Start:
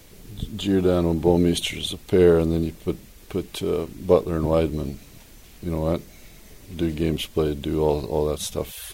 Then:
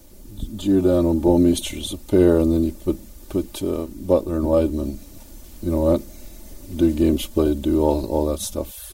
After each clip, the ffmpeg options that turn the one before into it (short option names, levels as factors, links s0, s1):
-af "dynaudnorm=f=280:g=5:m=1.78,equalizer=f=2300:w=0.7:g=-10.5,aecho=1:1:3.4:0.68"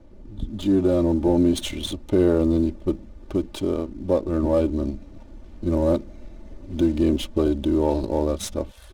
-filter_complex "[0:a]asplit=2[s0][s1];[s1]alimiter=limit=0.2:level=0:latency=1:release=132,volume=1.26[s2];[s0][s2]amix=inputs=2:normalize=0,adynamicsmooth=sensitivity=5:basefreq=1600,volume=0.447"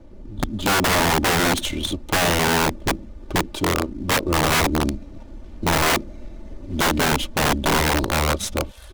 -af "aeval=exprs='(mod(7.5*val(0)+1,2)-1)/7.5':c=same,volume=1.58"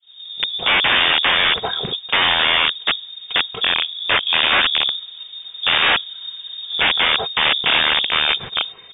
-af "crystalizer=i=4:c=0,lowpass=f=3100:t=q:w=0.5098,lowpass=f=3100:t=q:w=0.6013,lowpass=f=3100:t=q:w=0.9,lowpass=f=3100:t=q:w=2.563,afreqshift=-3700,agate=range=0.0224:threshold=0.0141:ratio=3:detection=peak,volume=1.19"